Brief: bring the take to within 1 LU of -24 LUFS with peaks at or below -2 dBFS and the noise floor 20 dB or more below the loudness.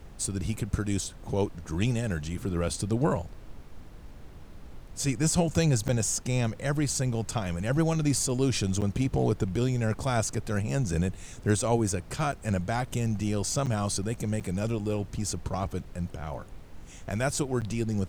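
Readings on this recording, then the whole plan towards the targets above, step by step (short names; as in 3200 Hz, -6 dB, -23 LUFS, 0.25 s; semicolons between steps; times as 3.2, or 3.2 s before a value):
dropouts 6; longest dropout 8.2 ms; noise floor -47 dBFS; noise floor target -49 dBFS; loudness -29.0 LUFS; peak -11.5 dBFS; loudness target -24.0 LUFS
-> interpolate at 5.88/8.81/12.32/13.66/14.4/17.61, 8.2 ms; noise print and reduce 6 dB; gain +5 dB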